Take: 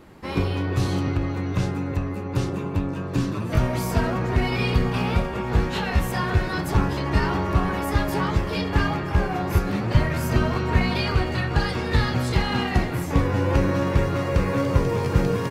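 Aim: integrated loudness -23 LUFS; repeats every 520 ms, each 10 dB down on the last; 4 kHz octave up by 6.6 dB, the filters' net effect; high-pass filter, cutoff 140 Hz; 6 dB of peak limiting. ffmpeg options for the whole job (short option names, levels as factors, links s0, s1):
-af "highpass=140,equalizer=f=4000:t=o:g=8.5,alimiter=limit=0.178:level=0:latency=1,aecho=1:1:520|1040|1560|2080:0.316|0.101|0.0324|0.0104,volume=1.33"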